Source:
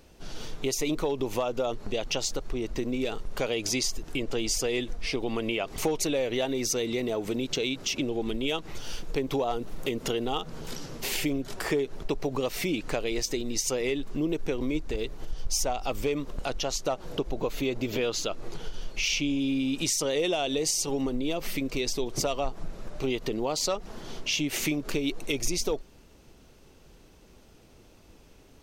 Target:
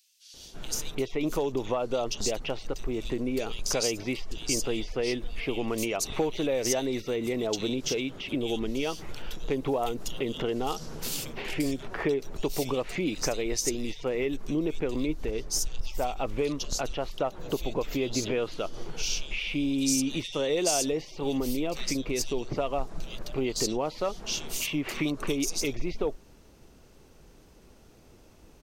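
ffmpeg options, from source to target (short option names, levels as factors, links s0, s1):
-filter_complex "[0:a]asettb=1/sr,asplit=3[s0][s1][s2];[s0]atrim=end=24.264[s3];[s1]atrim=start=24.26:end=25.06,asetpts=PTS-STARTPTS,afade=t=in:d=0.004:c=qsin,afade=t=out:st=0.796:d=0.004:c=qsin,equalizer=f=1100:t=o:w=0.42:g=8[s4];[s2]atrim=start=25.056[s5];[s3][s4]acrossfade=d=0.004:c1=hsin:c2=qsin[s6];[s6][s5]acrossfade=d=0.004:c1=qsin:c2=hsin,acrossover=split=3100[s7][s8];[s7]adelay=340[s9];[s9][s8]amix=inputs=2:normalize=0"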